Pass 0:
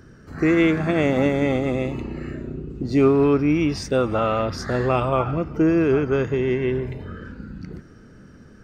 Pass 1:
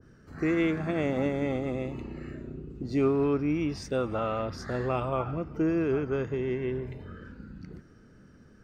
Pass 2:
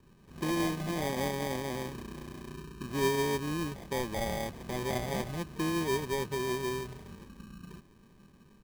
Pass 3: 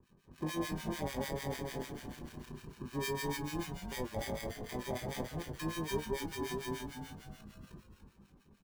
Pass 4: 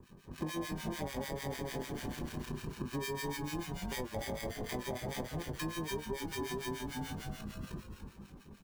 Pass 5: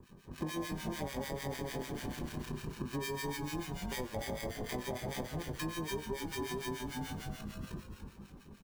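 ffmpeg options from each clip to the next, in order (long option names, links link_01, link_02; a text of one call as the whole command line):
ffmpeg -i in.wav -af "adynamicequalizer=threshold=0.02:dfrequency=1600:dqfactor=0.7:tfrequency=1600:tqfactor=0.7:attack=5:release=100:ratio=0.375:range=1.5:mode=cutabove:tftype=highshelf,volume=-8.5dB" out.wav
ffmpeg -i in.wav -af "aecho=1:1:5.2:0.4,acrusher=samples=32:mix=1:aa=0.000001,volume=-4.5dB" out.wav
ffmpeg -i in.wav -filter_complex "[0:a]acrossover=split=1200[link_01][link_02];[link_01]aeval=exprs='val(0)*(1-1/2+1/2*cos(2*PI*6.7*n/s))':channel_layout=same[link_03];[link_02]aeval=exprs='val(0)*(1-1/2-1/2*cos(2*PI*6.7*n/s))':channel_layout=same[link_04];[link_03][link_04]amix=inputs=2:normalize=0,asplit=2[link_05][link_06];[link_06]adelay=20,volume=-9dB[link_07];[link_05][link_07]amix=inputs=2:normalize=0,asplit=2[link_08][link_09];[link_09]asplit=5[link_10][link_11][link_12][link_13][link_14];[link_10]adelay=290,afreqshift=-120,volume=-6.5dB[link_15];[link_11]adelay=580,afreqshift=-240,volume=-13.6dB[link_16];[link_12]adelay=870,afreqshift=-360,volume=-20.8dB[link_17];[link_13]adelay=1160,afreqshift=-480,volume=-27.9dB[link_18];[link_14]adelay=1450,afreqshift=-600,volume=-35dB[link_19];[link_15][link_16][link_17][link_18][link_19]amix=inputs=5:normalize=0[link_20];[link_08][link_20]amix=inputs=2:normalize=0,volume=-2.5dB" out.wav
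ffmpeg -i in.wav -af "acompressor=threshold=-45dB:ratio=6,volume=9.5dB" out.wav
ffmpeg -i in.wav -af "aecho=1:1:92:0.1" out.wav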